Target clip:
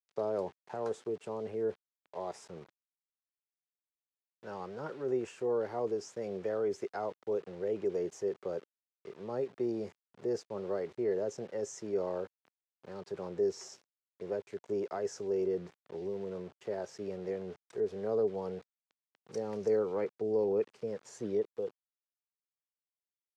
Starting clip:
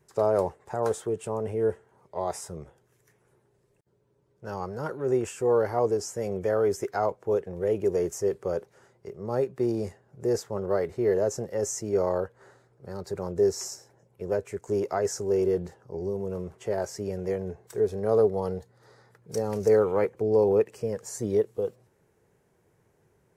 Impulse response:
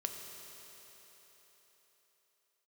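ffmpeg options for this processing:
-filter_complex "[0:a]acrossover=split=450|3000[s0][s1][s2];[s1]acompressor=threshold=0.0178:ratio=2[s3];[s0][s3][s2]amix=inputs=3:normalize=0,aeval=exprs='val(0)*gte(abs(val(0)),0.00562)':c=same,highpass=180,lowpass=4700,volume=0.501"

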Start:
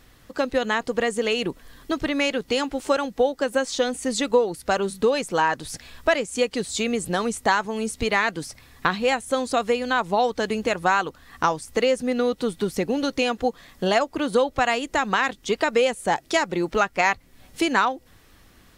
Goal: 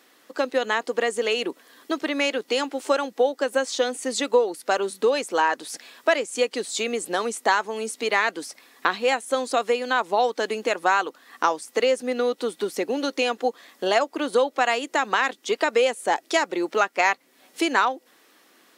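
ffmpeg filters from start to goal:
-af "highpass=f=280:w=0.5412,highpass=f=280:w=1.3066"

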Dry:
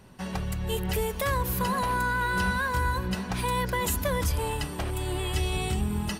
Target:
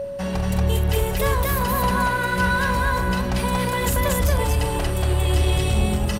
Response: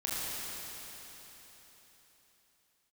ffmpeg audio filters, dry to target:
-filter_complex "[0:a]lowshelf=f=99:g=7,asplit=2[s0][s1];[s1]alimiter=level_in=1.19:limit=0.0631:level=0:latency=1,volume=0.841,volume=0.794[s2];[s0][s2]amix=inputs=2:normalize=0,aeval=exprs='val(0)+0.0501*sin(2*PI*560*n/s)':c=same,asoftclip=type=tanh:threshold=0.158,aecho=1:1:43.73|233.2:0.355|0.891,volume=1.19"

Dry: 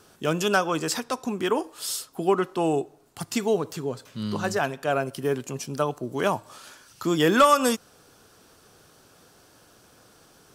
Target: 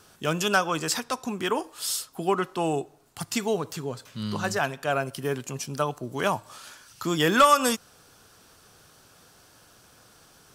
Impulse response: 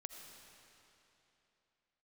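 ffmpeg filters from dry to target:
-af "equalizer=f=360:w=0.7:g=-5.5,volume=1.19"

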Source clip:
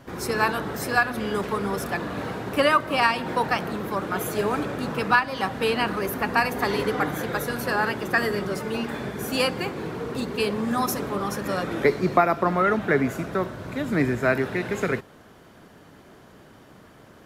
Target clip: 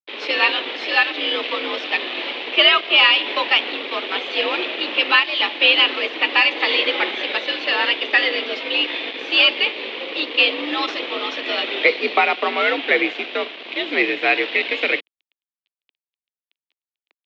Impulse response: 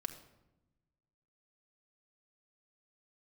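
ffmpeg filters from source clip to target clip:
-af "aeval=exprs='sgn(val(0))*max(abs(val(0))-0.0106,0)':c=same,aexciter=amount=8.4:drive=7.9:freq=2200,asoftclip=type=tanh:threshold=0.473,highpass=f=230:t=q:w=0.5412,highpass=f=230:t=q:w=1.307,lowpass=f=3300:t=q:w=0.5176,lowpass=f=3300:t=q:w=0.7071,lowpass=f=3300:t=q:w=1.932,afreqshift=66,volume=1.33"

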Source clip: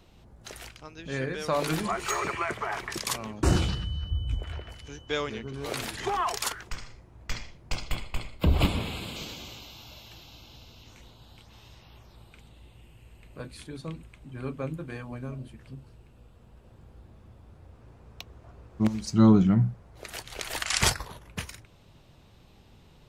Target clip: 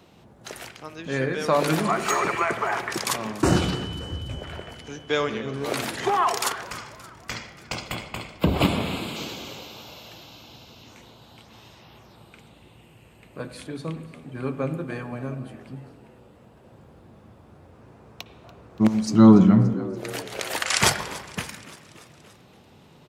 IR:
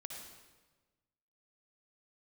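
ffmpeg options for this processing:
-filter_complex "[0:a]highpass=140,asplit=6[s0][s1][s2][s3][s4][s5];[s1]adelay=287,afreqshift=81,volume=0.119[s6];[s2]adelay=574,afreqshift=162,volume=0.0716[s7];[s3]adelay=861,afreqshift=243,volume=0.0427[s8];[s4]adelay=1148,afreqshift=324,volume=0.0257[s9];[s5]adelay=1435,afreqshift=405,volume=0.0155[s10];[s0][s6][s7][s8][s9][s10]amix=inputs=6:normalize=0,asplit=2[s11][s12];[1:a]atrim=start_sample=2205,lowpass=2600[s13];[s12][s13]afir=irnorm=-1:irlink=0,volume=0.708[s14];[s11][s14]amix=inputs=2:normalize=0,volume=1.58"

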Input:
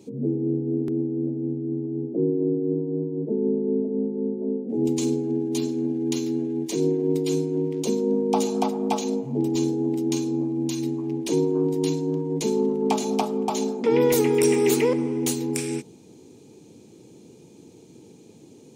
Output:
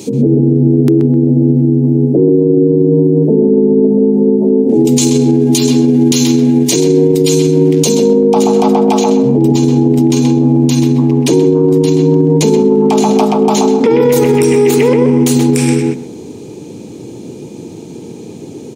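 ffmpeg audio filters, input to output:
-filter_complex "[0:a]asetnsamples=n=441:p=0,asendcmd='8.1 highshelf g -3.5',highshelf=f=2300:g=9.5,asplit=2[s0][s1];[s1]adelay=129,lowpass=f=2200:p=1,volume=0.631,asplit=2[s2][s3];[s3]adelay=129,lowpass=f=2200:p=1,volume=0.22,asplit=2[s4][s5];[s5]adelay=129,lowpass=f=2200:p=1,volume=0.22[s6];[s0][s2][s4][s6]amix=inputs=4:normalize=0,alimiter=level_in=10:limit=0.891:release=50:level=0:latency=1,volume=0.891"

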